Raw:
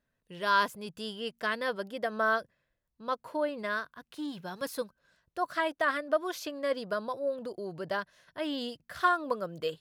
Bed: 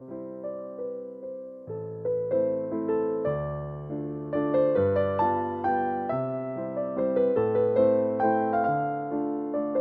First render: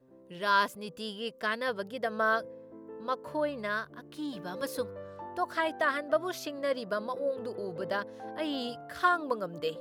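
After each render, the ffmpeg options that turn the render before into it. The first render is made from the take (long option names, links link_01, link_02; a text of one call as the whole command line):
ffmpeg -i in.wav -i bed.wav -filter_complex "[1:a]volume=-19dB[link_01];[0:a][link_01]amix=inputs=2:normalize=0" out.wav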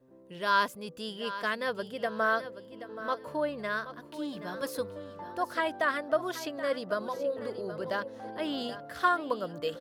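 ffmpeg -i in.wav -af "aecho=1:1:777|1554|2331:0.224|0.0537|0.0129" out.wav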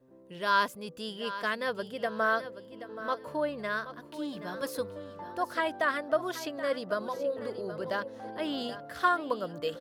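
ffmpeg -i in.wav -af anull out.wav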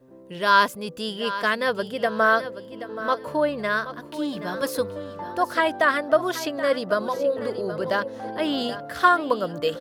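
ffmpeg -i in.wav -af "volume=8.5dB" out.wav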